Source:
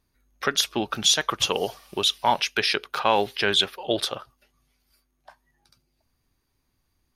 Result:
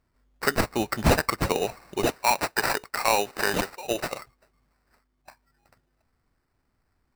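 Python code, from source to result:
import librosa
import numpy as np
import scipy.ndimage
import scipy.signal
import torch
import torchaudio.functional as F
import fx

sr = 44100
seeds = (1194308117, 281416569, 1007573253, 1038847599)

y = fx.sample_hold(x, sr, seeds[0], rate_hz=3300.0, jitter_pct=0)
y = fx.low_shelf(y, sr, hz=340.0, db=-10.0, at=(2.06, 4.19))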